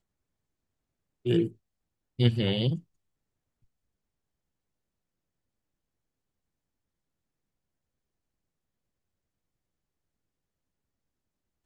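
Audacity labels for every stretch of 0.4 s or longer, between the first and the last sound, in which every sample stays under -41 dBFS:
1.490000	2.190000	silence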